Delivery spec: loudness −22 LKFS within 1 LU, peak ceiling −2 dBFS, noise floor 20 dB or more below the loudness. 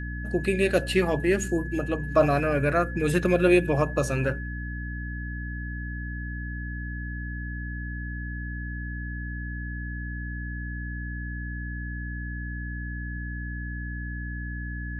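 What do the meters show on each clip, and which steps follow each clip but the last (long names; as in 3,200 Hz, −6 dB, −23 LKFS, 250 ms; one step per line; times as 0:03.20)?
mains hum 60 Hz; hum harmonics up to 300 Hz; level of the hum −31 dBFS; interfering tone 1,700 Hz; level of the tone −38 dBFS; integrated loudness −28.5 LKFS; sample peak −8.0 dBFS; target loudness −22.0 LKFS
→ mains-hum notches 60/120/180/240/300 Hz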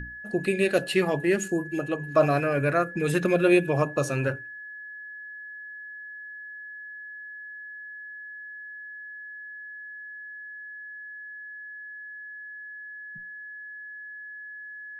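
mains hum none found; interfering tone 1,700 Hz; level of the tone −38 dBFS
→ notch filter 1,700 Hz, Q 30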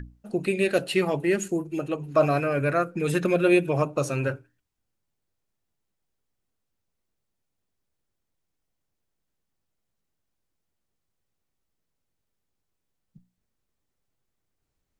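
interfering tone none found; integrated loudness −25.0 LKFS; sample peak −9.0 dBFS; target loudness −22.0 LKFS
→ level +3 dB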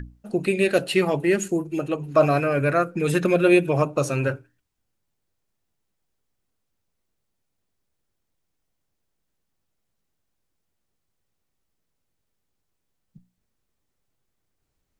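integrated loudness −22.0 LKFS; sample peak −6.0 dBFS; background noise floor −77 dBFS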